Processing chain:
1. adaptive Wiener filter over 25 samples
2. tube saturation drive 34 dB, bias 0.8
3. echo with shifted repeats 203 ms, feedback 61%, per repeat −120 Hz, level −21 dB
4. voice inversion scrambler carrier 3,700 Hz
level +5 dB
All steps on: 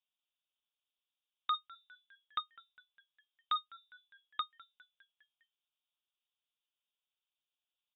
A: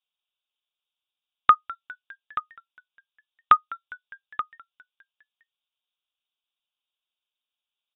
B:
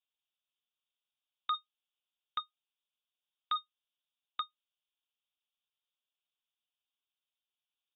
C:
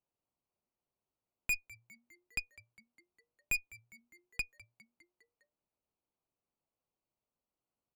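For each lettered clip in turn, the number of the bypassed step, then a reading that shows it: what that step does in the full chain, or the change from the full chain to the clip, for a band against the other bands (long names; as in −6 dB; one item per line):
2, change in crest factor +5.0 dB
3, change in momentary loudness spread −12 LU
4, change in integrated loudness +1.5 LU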